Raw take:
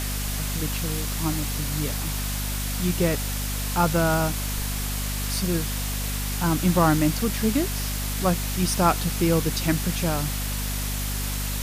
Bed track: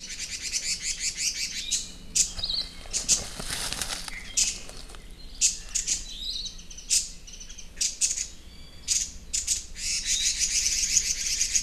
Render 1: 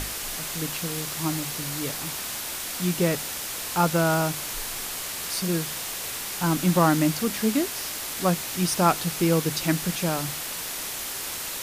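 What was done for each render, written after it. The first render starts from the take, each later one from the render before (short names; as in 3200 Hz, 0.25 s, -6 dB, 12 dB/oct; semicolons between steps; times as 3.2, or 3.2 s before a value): notches 50/100/150/200/250 Hz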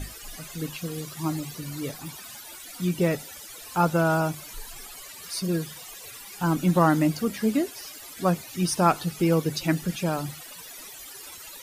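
denoiser 17 dB, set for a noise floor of -33 dBFS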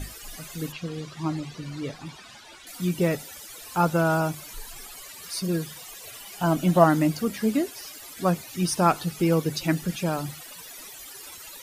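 0.72–2.67 LPF 4700 Hz; 6.07–6.84 small resonant body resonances 660/3000 Hz, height 13 dB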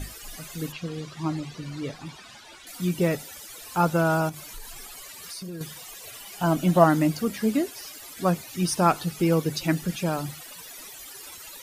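4.29–5.61 compressor, threshold -34 dBFS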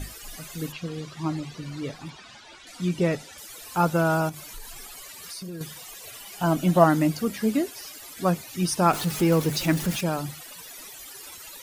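2.1–3.38 LPF 7100 Hz; 8.93–10.01 zero-crossing step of -29.5 dBFS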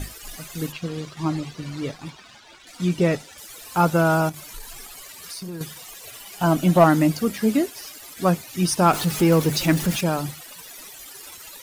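sample leveller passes 1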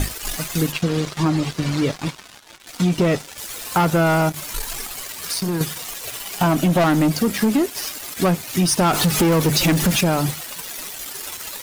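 sample leveller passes 3; compressor 4:1, threshold -16 dBFS, peak gain reduction 8.5 dB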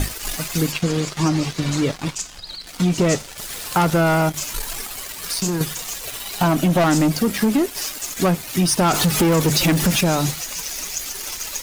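add bed track -6 dB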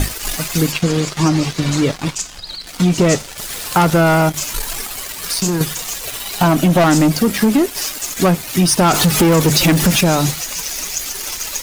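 gain +4.5 dB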